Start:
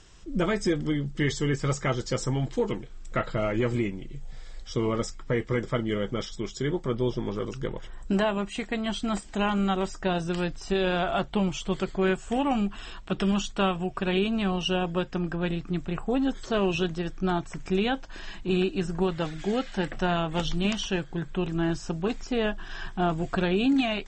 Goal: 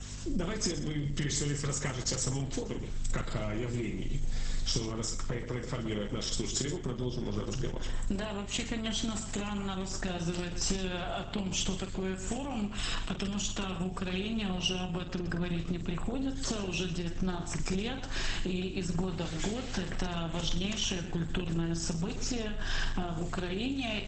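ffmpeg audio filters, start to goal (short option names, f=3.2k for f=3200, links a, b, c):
-filter_complex "[0:a]acompressor=threshold=-34dB:ratio=16,asettb=1/sr,asplit=3[a][b][c];[a]atrim=end=4.854[d];[b]atrim=start=4.85:end=7.23,asetpts=PTS-STARTPTS,afade=t=in:d=0.004:c=qsin,afade=t=out:st=2.376:d=0.004:c=qsin,equalizer=f=85:w=1.6:g=-3[e];[c]atrim=start=7.226[f];[d][e]acrossfade=d=0.004:c1=hsin:c2=qsin[g];[g][f]acrossfade=d=0.004:c1=qsin:c2=hsin,aecho=1:1:126:0.224,aeval=exprs='val(0)+0.00447*(sin(2*PI*50*n/s)+sin(2*PI*2*50*n/s)/2+sin(2*PI*3*50*n/s)/3+sin(2*PI*4*50*n/s)/4+sin(2*PI*5*50*n/s)/5)':c=same,crystalizer=i=2.5:c=0,aeval=exprs='0.106*(cos(1*acos(clip(val(0)/0.106,-1,1)))-cos(1*PI/2))+0.00668*(cos(4*acos(clip(val(0)/0.106,-1,1)))-cos(4*PI/2))+0.00531*(cos(5*acos(clip(val(0)/0.106,-1,1)))-cos(5*PI/2))+0.00211*(cos(7*acos(clip(val(0)/0.106,-1,1)))-cos(7*PI/2))':c=same,adynamicequalizer=threshold=0.00158:dfrequency=4700:dqfactor=4:tfrequency=4700:tqfactor=4:attack=5:release=100:ratio=0.375:range=4:mode=cutabove:tftype=bell,acrossover=split=180|3000[h][i][j];[i]acompressor=threshold=-38dB:ratio=10[k];[h][k][j]amix=inputs=3:normalize=0,asplit=2[l][m];[m]adelay=48,volume=-8dB[n];[l][n]amix=inputs=2:normalize=0,bandreject=f=306.8:t=h:w=4,bandreject=f=613.6:t=h:w=4,bandreject=f=920.4:t=h:w=4,bandreject=f=1.2272k:t=h:w=4,bandreject=f=1.534k:t=h:w=4,bandreject=f=1.8408k:t=h:w=4,bandreject=f=2.1476k:t=h:w=4,bandreject=f=2.4544k:t=h:w=4,bandreject=f=2.7612k:t=h:w=4,bandreject=f=3.068k:t=h:w=4,bandreject=f=3.3748k:t=h:w=4,bandreject=f=3.6816k:t=h:w=4,bandreject=f=3.9884k:t=h:w=4,volume=5dB" -ar 48000 -c:a libopus -b:a 12k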